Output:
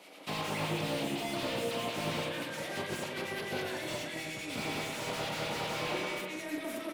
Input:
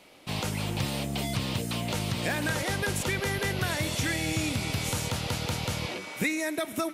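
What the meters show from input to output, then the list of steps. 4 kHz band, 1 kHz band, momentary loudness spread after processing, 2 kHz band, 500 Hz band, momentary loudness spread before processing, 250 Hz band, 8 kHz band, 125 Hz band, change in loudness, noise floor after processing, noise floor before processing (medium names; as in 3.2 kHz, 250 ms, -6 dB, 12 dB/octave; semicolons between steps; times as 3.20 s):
-5.0 dB, -2.0 dB, 4 LU, -6.0 dB, -2.0 dB, 3 LU, -6.0 dB, -9.5 dB, -12.0 dB, -5.5 dB, -41 dBFS, -41 dBFS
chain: high-pass 260 Hz 12 dB/octave; compressor with a negative ratio -35 dBFS, ratio -0.5; spring tank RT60 1.6 s, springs 32/49 ms, chirp 25 ms, DRR 0.5 dB; harmonic tremolo 9.6 Hz, depth 50%, crossover 1.5 kHz; doubling 43 ms -12.5 dB; on a send: delay 966 ms -18.5 dB; on the sum: slew-rate limiter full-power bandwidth 44 Hz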